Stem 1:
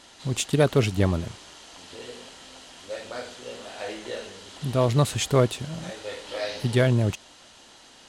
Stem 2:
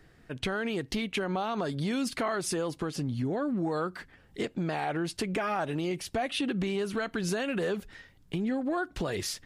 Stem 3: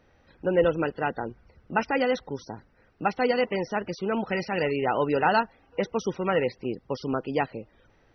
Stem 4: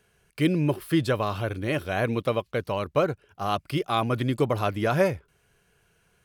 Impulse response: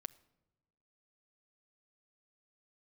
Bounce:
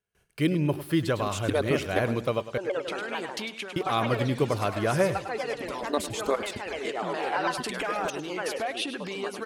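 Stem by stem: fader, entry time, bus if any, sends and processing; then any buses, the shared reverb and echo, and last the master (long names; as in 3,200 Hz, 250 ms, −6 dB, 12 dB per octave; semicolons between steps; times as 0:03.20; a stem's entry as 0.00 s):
+0.5 dB, 0.95 s, no send, echo send −15 dB, harmonic-percussive split with one part muted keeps percussive; output level in coarse steps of 12 dB
+2.0 dB, 2.45 s, no send, echo send −12 dB, reverb reduction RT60 0.51 s; high-pass filter 600 Hz 6 dB per octave; automatic ducking −10 dB, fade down 0.25 s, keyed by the fourth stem
−6.5 dB, 2.10 s, no send, echo send −7.5 dB, high-pass filter 440 Hz 12 dB per octave; pitch modulation by a square or saw wave saw down 6.7 Hz, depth 250 cents
−2.0 dB, 0.00 s, muted 0:02.58–0:03.76, no send, echo send −13.5 dB, no processing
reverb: not used
echo: repeating echo 102 ms, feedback 29%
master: noise gate with hold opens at −56 dBFS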